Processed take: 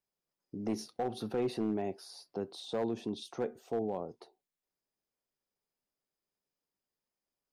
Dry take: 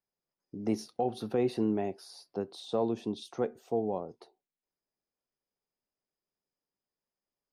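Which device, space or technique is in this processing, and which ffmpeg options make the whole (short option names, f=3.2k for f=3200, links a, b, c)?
clipper into limiter: -af "asoftclip=type=hard:threshold=-22.5dB,alimiter=level_in=2dB:limit=-24dB:level=0:latency=1:release=32,volume=-2dB"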